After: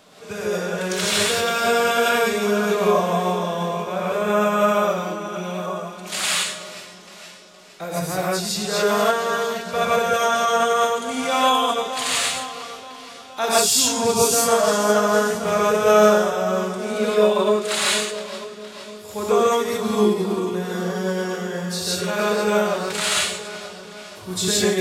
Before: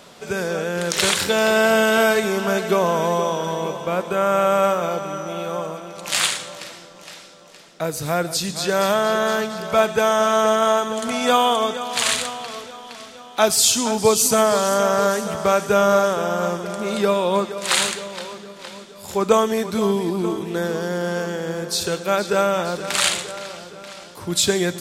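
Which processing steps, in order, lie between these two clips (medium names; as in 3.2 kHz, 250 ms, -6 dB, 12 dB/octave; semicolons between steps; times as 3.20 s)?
gated-style reverb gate 190 ms rising, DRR -6 dB; formant-preserving pitch shift +1 st; trim -7 dB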